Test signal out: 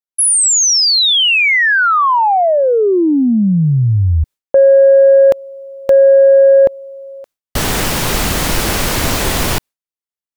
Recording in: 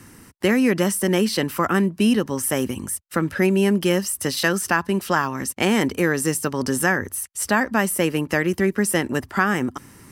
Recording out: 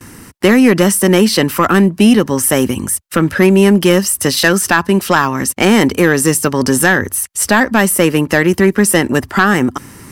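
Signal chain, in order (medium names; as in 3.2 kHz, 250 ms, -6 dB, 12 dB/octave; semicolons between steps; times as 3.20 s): gate with hold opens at -38 dBFS; in parallel at -9 dB: sine folder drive 7 dB, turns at -4 dBFS; on the sum: trim +3.5 dB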